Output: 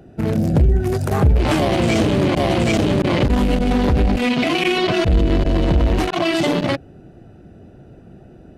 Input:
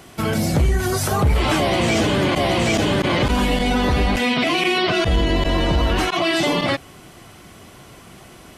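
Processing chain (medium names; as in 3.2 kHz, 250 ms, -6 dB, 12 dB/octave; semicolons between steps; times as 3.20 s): local Wiener filter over 41 samples; trim +3.5 dB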